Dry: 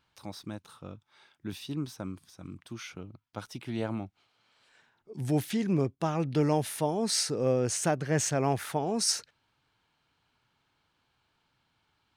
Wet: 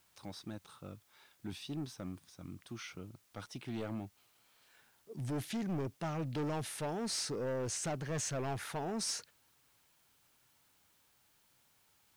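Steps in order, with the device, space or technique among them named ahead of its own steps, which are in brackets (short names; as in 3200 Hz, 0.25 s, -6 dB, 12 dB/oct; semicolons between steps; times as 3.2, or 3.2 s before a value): compact cassette (soft clip -29.5 dBFS, distortion -7 dB; LPF 11000 Hz 12 dB/oct; wow and flutter; white noise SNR 30 dB); gain -3.5 dB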